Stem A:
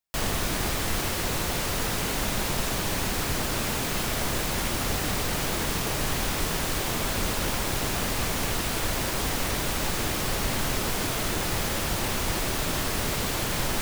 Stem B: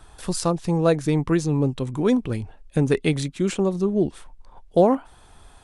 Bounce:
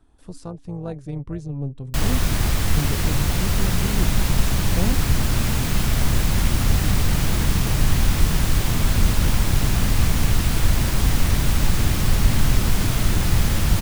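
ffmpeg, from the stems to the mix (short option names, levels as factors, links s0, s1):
-filter_complex "[0:a]adelay=1800,volume=1.19[s0];[1:a]tiltshelf=f=690:g=4.5,tremolo=f=280:d=0.571,volume=0.251[s1];[s0][s1]amix=inputs=2:normalize=0,asubboost=boost=4.5:cutoff=200"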